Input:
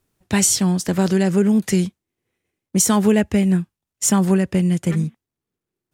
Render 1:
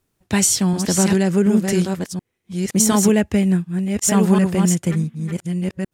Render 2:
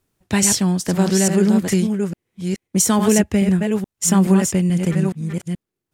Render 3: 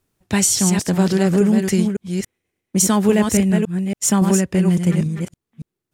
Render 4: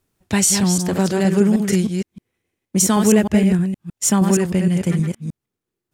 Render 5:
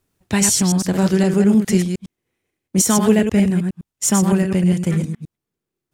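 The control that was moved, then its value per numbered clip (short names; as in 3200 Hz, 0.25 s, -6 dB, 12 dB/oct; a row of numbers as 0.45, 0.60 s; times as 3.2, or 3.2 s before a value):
reverse delay, time: 0.731, 0.427, 0.281, 0.156, 0.103 s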